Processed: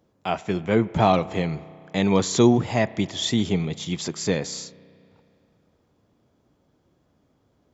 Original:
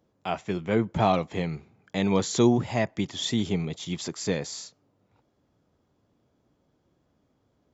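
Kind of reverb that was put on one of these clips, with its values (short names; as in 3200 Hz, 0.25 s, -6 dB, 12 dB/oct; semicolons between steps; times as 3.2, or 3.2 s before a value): spring tank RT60 2.6 s, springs 32 ms, chirp 80 ms, DRR 18 dB; gain +4 dB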